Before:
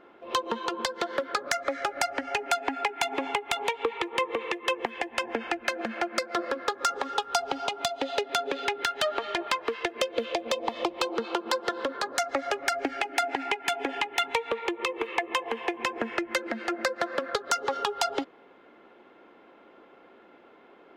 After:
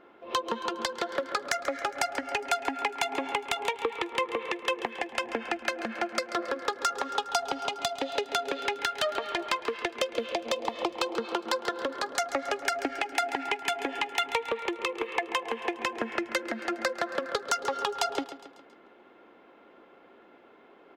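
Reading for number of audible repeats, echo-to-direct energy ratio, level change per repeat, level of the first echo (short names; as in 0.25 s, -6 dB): 4, -12.5 dB, -6.0 dB, -13.5 dB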